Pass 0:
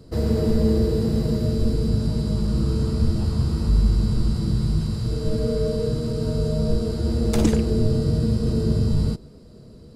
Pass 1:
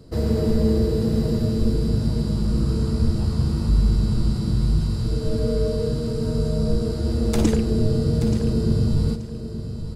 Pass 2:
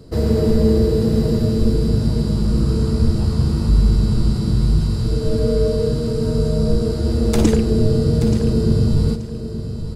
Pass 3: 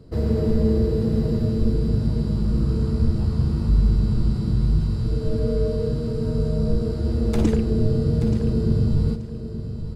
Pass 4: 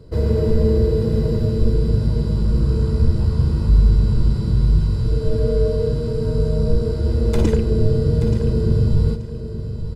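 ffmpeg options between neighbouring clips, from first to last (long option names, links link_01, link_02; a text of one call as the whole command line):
ffmpeg -i in.wav -af "aecho=1:1:879|1758|2637:0.299|0.0657|0.0144" out.wav
ffmpeg -i in.wav -af "equalizer=frequency=420:width_type=o:width=0.22:gain=3,volume=4dB" out.wav
ffmpeg -i in.wav -af "bass=frequency=250:gain=3,treble=frequency=4000:gain=-7,volume=-6.5dB" out.wav
ffmpeg -i in.wav -af "aecho=1:1:2:0.38,volume=2.5dB" out.wav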